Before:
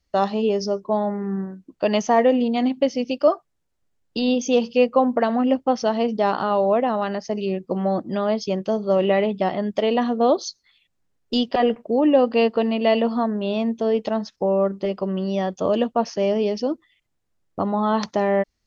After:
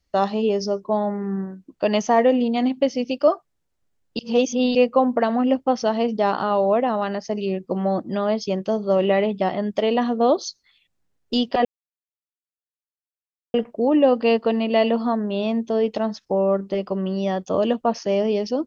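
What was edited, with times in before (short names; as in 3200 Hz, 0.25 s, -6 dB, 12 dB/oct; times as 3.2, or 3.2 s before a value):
4.19–4.75 reverse
11.65 insert silence 1.89 s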